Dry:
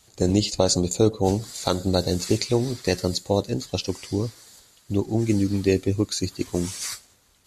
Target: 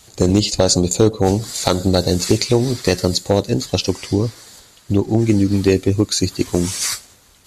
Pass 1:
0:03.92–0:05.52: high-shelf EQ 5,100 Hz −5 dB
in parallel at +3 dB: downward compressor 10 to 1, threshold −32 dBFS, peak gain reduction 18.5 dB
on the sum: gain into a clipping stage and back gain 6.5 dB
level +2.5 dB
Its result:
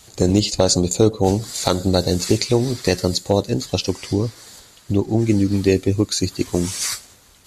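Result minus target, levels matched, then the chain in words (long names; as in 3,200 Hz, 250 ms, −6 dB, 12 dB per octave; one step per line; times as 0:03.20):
downward compressor: peak gain reduction +7 dB
0:03.92–0:05.52: high-shelf EQ 5,100 Hz −5 dB
in parallel at +3 dB: downward compressor 10 to 1, threshold −24 dBFS, peak gain reduction 11.5 dB
on the sum: gain into a clipping stage and back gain 6.5 dB
level +2.5 dB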